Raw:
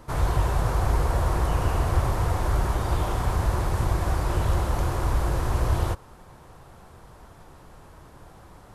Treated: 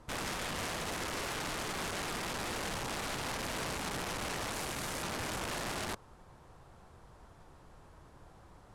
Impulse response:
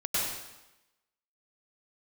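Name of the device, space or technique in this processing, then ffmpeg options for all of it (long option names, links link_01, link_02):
overflowing digital effects unit: -filter_complex "[0:a]asettb=1/sr,asplit=3[link_01][link_02][link_03];[link_01]atrim=end=4.534[link_04];[link_02]atrim=start=4.53:end=5.03,asetpts=PTS-STARTPTS,afade=type=in:duration=0.004:curve=qsin,afade=type=out:start_time=0.496:duration=0.004:curve=qsin,highshelf=frequency=5900:gain=9[link_05];[link_03]atrim=start=5.026[link_06];[link_04][link_05]acrossfade=duration=0.004:curve1=hsin:curve2=qsin[link_07];[link_07][link_06]acrossfade=duration=0.004:curve1=qsin:curve2=hsin,aeval=exprs='(mod(15.8*val(0)+1,2)-1)/15.8':channel_layout=same,lowpass=10000,volume=-8.5dB"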